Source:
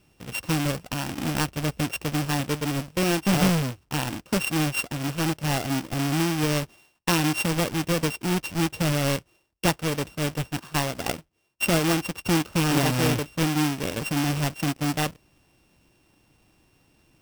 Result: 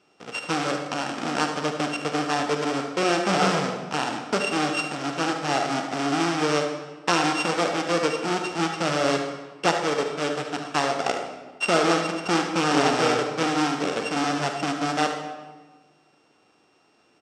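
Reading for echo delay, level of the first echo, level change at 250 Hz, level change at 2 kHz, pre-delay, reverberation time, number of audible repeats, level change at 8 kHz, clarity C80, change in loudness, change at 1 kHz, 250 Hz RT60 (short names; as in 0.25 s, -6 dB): 74 ms, -10.5 dB, -1.5 dB, +2.5 dB, 40 ms, 1.3 s, 1, -2.5 dB, 7.0 dB, +1.0 dB, +6.5 dB, 1.6 s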